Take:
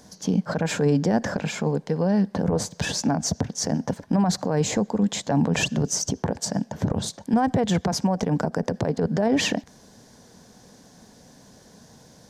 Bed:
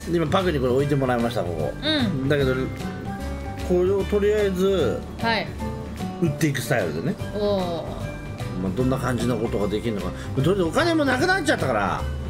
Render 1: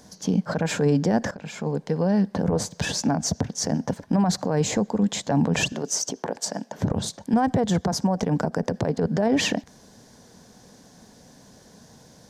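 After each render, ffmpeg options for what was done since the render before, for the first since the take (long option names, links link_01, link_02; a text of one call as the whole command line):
ffmpeg -i in.wav -filter_complex "[0:a]asettb=1/sr,asplit=3[link_01][link_02][link_03];[link_01]atrim=end=5.724[link_04];[link_02]atrim=start=5.72:end=6.79,asetpts=PTS-STARTPTS,afade=type=in:duration=0.004:curve=qsin,afade=type=out:start_time=1.066:duration=0.004:curve=qsin,highpass=320[link_05];[link_03]atrim=start=6.786[link_06];[link_04][link_05]acrossfade=duration=0.004:curve1=hsin:curve2=qsin[link_07];[link_07][link_06]acrossfade=duration=0.004:curve1=qsin:curve2=hsin,asettb=1/sr,asplit=3[link_08][link_09][link_10];[link_08]atrim=end=7.584[link_11];[link_09]atrim=start=7.58:end=8.16,asetpts=PTS-STARTPTS,afade=type=in:duration=0.004:curve=qsin,afade=type=out:start_time=0.576:duration=0.004:curve=qsin,equalizer=frequency=2500:width=2:gain=-7.5[link_12];[link_10]atrim=start=8.156[link_13];[link_11][link_12]acrossfade=duration=0.004:curve1=hsin:curve2=qsin[link_14];[link_14][link_13]acrossfade=duration=0.004:curve1=qsin:curve2=hsin,asplit=2[link_15][link_16];[link_15]atrim=end=1.31,asetpts=PTS-STARTPTS,afade=type=out:start_time=1.306:duration=0.004:curve=hsin:silence=0.141254[link_17];[link_16]atrim=start=1.31,asetpts=PTS-STARTPTS,afade=type=in:duration=0.56:silence=0.141254[link_18];[link_17][link_18]concat=n=2:v=0:a=1" out.wav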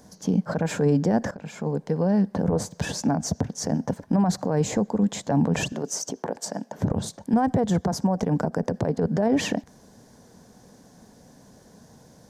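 ffmpeg -i in.wav -af "equalizer=frequency=3700:width=0.56:gain=-6.5" out.wav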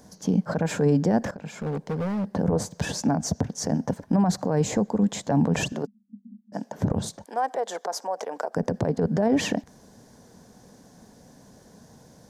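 ffmpeg -i in.wav -filter_complex "[0:a]asettb=1/sr,asplit=3[link_01][link_02][link_03];[link_01]atrim=end=1.204[link_04];[link_02]atrim=start=1.2:end=2.27,asetpts=PTS-STARTPTS,afade=type=in:duration=0.004:curve=qsin,afade=type=out:start_time=1.066:duration=0.004:curve=qsin,volume=24.5dB,asoftclip=hard,volume=-24.5dB[link_05];[link_03]atrim=start=2.266[link_06];[link_04][link_05]acrossfade=duration=0.004:curve1=hsin:curve2=qsin[link_07];[link_07][link_06]acrossfade=duration=0.004:curve1=qsin:curve2=hsin,asplit=3[link_08][link_09][link_10];[link_08]afade=type=out:start_time=5.85:duration=0.02[link_11];[link_09]asuperpass=centerf=220:order=8:qfactor=5,afade=type=in:start_time=5.85:duration=0.02,afade=type=out:start_time=6.52:duration=0.02[link_12];[link_10]afade=type=in:start_time=6.52:duration=0.02[link_13];[link_11][link_12][link_13]amix=inputs=3:normalize=0,asplit=3[link_14][link_15][link_16];[link_14]afade=type=out:start_time=7.24:duration=0.02[link_17];[link_15]highpass=frequency=480:width=0.5412,highpass=frequency=480:width=1.3066,afade=type=in:start_time=7.24:duration=0.02,afade=type=out:start_time=8.54:duration=0.02[link_18];[link_16]afade=type=in:start_time=8.54:duration=0.02[link_19];[link_17][link_18][link_19]amix=inputs=3:normalize=0" out.wav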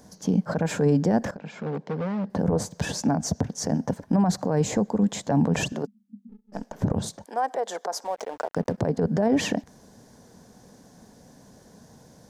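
ffmpeg -i in.wav -filter_complex "[0:a]asettb=1/sr,asplit=3[link_01][link_02][link_03];[link_01]atrim=end=1.384[link_04];[link_02]atrim=start=1.38:end=2.3,asetpts=PTS-STARTPTS,afade=type=in:duration=0.004:curve=qsin,afade=type=out:start_time=0.916:duration=0.004:curve=qsin,highpass=140,lowpass=4300[link_05];[link_03]atrim=start=2.296[link_06];[link_04][link_05]acrossfade=duration=0.004:curve1=hsin:curve2=qsin[link_07];[link_07][link_06]acrossfade=duration=0.004:curve1=qsin:curve2=hsin,asettb=1/sr,asplit=3[link_08][link_09][link_10];[link_08]atrim=end=6.294[link_11];[link_09]atrim=start=6.29:end=6.83,asetpts=PTS-STARTPTS,afade=type=in:duration=0.004:curve=qsin,afade=type=out:start_time=0.536:duration=0.004:curve=qsin,aeval=exprs='if(lt(val(0),0),0.447*val(0),val(0))':channel_layout=same[link_12];[link_10]atrim=start=6.826[link_13];[link_11][link_12]acrossfade=duration=0.004:curve1=hsin:curve2=qsin[link_14];[link_14][link_13]acrossfade=duration=0.004:curve1=qsin:curve2=hsin,asettb=1/sr,asplit=3[link_15][link_16][link_17];[link_15]atrim=end=8.044[link_18];[link_16]atrim=start=8.04:end=8.78,asetpts=PTS-STARTPTS,afade=type=in:duration=0.004:curve=qsin,afade=type=out:start_time=0.736:duration=0.004:curve=qsin,aeval=exprs='sgn(val(0))*max(abs(val(0))-0.00501,0)':channel_layout=same[link_19];[link_17]atrim=start=8.776[link_20];[link_18][link_19]acrossfade=duration=0.004:curve1=hsin:curve2=qsin[link_21];[link_21][link_20]acrossfade=duration=0.004:curve1=qsin:curve2=hsin" out.wav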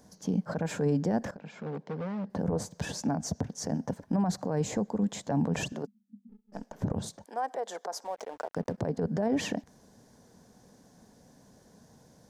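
ffmpeg -i in.wav -af "volume=-6.5dB" out.wav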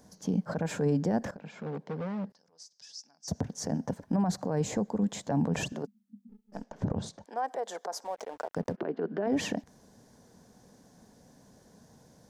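ffmpeg -i in.wav -filter_complex "[0:a]asettb=1/sr,asplit=3[link_01][link_02][link_03];[link_01]atrim=end=2.324[link_04];[link_02]atrim=start=2.32:end=3.28,asetpts=PTS-STARTPTS,afade=type=in:duration=0.004:curve=qsin,afade=type=out:start_time=0.956:duration=0.004:curve=qsin,bandpass=frequency=5200:width_type=q:width=5.9[link_05];[link_03]atrim=start=3.276[link_06];[link_04][link_05]acrossfade=duration=0.004:curve1=hsin:curve2=qsin[link_07];[link_07][link_06]acrossfade=duration=0.004:curve1=qsin:curve2=hsin,asettb=1/sr,asplit=3[link_08][link_09][link_10];[link_08]atrim=end=6.634[link_11];[link_09]atrim=start=6.63:end=7.46,asetpts=PTS-STARTPTS,afade=type=in:duration=0.004:curve=qsin,afade=type=out:start_time=0.826:duration=0.004:curve=qsin,lowpass=6400[link_12];[link_10]atrim=start=7.456[link_13];[link_11][link_12]acrossfade=duration=0.004:curve1=hsin:curve2=qsin[link_14];[link_14][link_13]acrossfade=duration=0.004:curve1=qsin:curve2=hsin,asplit=3[link_15][link_16][link_17];[link_15]afade=type=out:start_time=8.75:duration=0.02[link_18];[link_16]highpass=frequency=230:width=0.5412,highpass=frequency=230:width=1.3066,equalizer=frequency=240:width_type=q:width=4:gain=-4,equalizer=frequency=360:width_type=q:width=4:gain=8,equalizer=frequency=520:width_type=q:width=4:gain=-6,equalizer=frequency=840:width_type=q:width=4:gain=-4,equalizer=frequency=1400:width_type=q:width=4:gain=5,equalizer=frequency=2800:width_type=q:width=4:gain=5,lowpass=frequency=3500:width=0.5412,lowpass=frequency=3500:width=1.3066,afade=type=in:start_time=8.75:duration=0.02,afade=type=out:start_time=9.26:duration=0.02[link_19];[link_17]afade=type=in:start_time=9.26:duration=0.02[link_20];[link_18][link_19][link_20]amix=inputs=3:normalize=0" out.wav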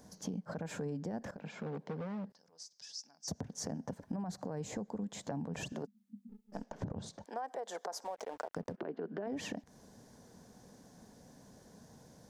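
ffmpeg -i in.wav -af "acompressor=threshold=-37dB:ratio=6" out.wav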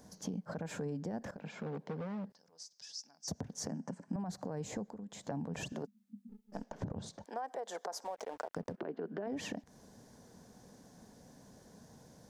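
ffmpeg -i in.wav -filter_complex "[0:a]asettb=1/sr,asplit=3[link_01][link_02][link_03];[link_01]atrim=end=3.684[link_04];[link_02]atrim=start=3.68:end=4.16,asetpts=PTS-STARTPTS,afade=type=in:duration=0.004:curve=qsin,afade=type=out:start_time=0.476:duration=0.004:curve=qsin,highpass=frequency=150:width=0.5412,highpass=frequency=150:width=1.3066,equalizer=frequency=180:width_type=q:width=4:gain=4,equalizer=frequency=470:width_type=q:width=4:gain=-5,equalizer=frequency=710:width_type=q:width=4:gain=-4,equalizer=frequency=3600:width_type=q:width=4:gain=-9,equalizer=frequency=7800:width_type=q:width=4:gain=6,lowpass=frequency=9100:width=0.5412,lowpass=frequency=9100:width=1.3066[link_05];[link_03]atrim=start=4.156[link_06];[link_04][link_05]acrossfade=duration=0.004:curve1=hsin:curve2=qsin[link_07];[link_07][link_06]acrossfade=duration=0.004:curve1=qsin:curve2=hsin,asettb=1/sr,asplit=3[link_08][link_09][link_10];[link_08]atrim=end=4.854[link_11];[link_09]atrim=start=4.85:end=5.29,asetpts=PTS-STARTPTS,afade=type=in:duration=0.004:curve=qsin,afade=type=out:start_time=0.436:duration=0.004:curve=qsin,acompressor=threshold=-48dB:ratio=2:attack=3.2:release=140:knee=1:detection=peak[link_12];[link_10]atrim=start=5.286[link_13];[link_11][link_12]acrossfade=duration=0.004:curve1=hsin:curve2=qsin[link_14];[link_14][link_13]acrossfade=duration=0.004:curve1=qsin:curve2=hsin" out.wav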